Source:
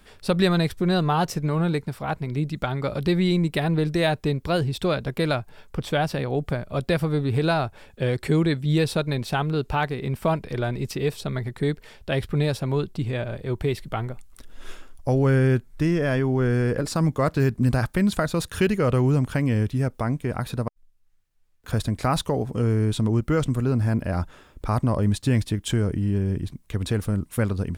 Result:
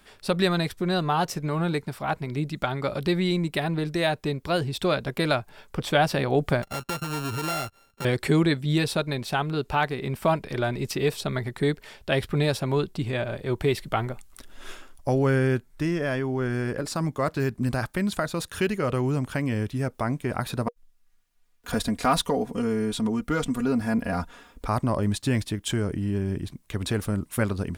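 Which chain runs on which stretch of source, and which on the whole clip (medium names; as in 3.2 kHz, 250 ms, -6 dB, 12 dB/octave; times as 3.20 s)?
6.62–8.05 s: sorted samples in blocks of 32 samples + compression 4:1, threshold -33 dBFS + gate -41 dBFS, range -16 dB
20.66–24.67 s: hard clipper -12 dBFS + comb 4.2 ms, depth 73%
whole clip: band-stop 480 Hz, Q 12; gain riding 2 s; bass shelf 190 Hz -8 dB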